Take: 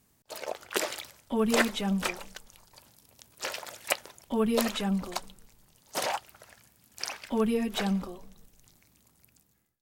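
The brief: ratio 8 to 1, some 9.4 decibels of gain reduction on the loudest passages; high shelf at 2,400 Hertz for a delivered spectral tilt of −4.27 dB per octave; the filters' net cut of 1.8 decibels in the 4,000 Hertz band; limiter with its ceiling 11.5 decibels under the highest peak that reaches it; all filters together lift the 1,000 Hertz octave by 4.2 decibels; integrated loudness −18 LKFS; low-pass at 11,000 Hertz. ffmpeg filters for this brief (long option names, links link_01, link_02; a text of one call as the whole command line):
ffmpeg -i in.wav -af "lowpass=11000,equalizer=frequency=1000:width_type=o:gain=5,highshelf=frequency=2400:gain=3.5,equalizer=frequency=4000:width_type=o:gain=-6,acompressor=threshold=-28dB:ratio=8,volume=18.5dB,alimiter=limit=-5.5dB:level=0:latency=1" out.wav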